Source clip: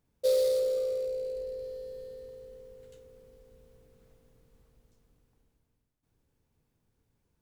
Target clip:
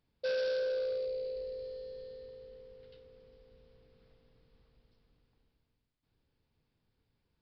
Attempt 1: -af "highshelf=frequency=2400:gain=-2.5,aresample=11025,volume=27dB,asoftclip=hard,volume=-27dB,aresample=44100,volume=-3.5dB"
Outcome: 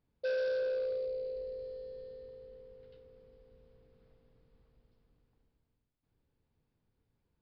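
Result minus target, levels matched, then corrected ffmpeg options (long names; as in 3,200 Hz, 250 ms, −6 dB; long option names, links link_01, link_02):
4,000 Hz band −7.0 dB
-af "highshelf=frequency=2400:gain=8.5,aresample=11025,volume=27dB,asoftclip=hard,volume=-27dB,aresample=44100,volume=-3.5dB"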